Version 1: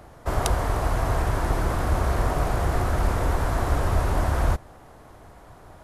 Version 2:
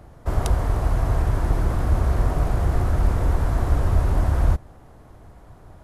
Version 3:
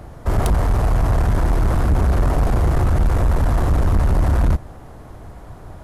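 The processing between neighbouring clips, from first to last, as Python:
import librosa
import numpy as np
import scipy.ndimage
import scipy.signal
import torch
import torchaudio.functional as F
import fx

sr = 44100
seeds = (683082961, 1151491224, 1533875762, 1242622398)

y1 = fx.low_shelf(x, sr, hz=320.0, db=9.5)
y1 = F.gain(torch.from_numpy(y1), -5.0).numpy()
y2 = 10.0 ** (-20.0 / 20.0) * np.tanh(y1 / 10.0 ** (-20.0 / 20.0))
y2 = F.gain(torch.from_numpy(y2), 8.5).numpy()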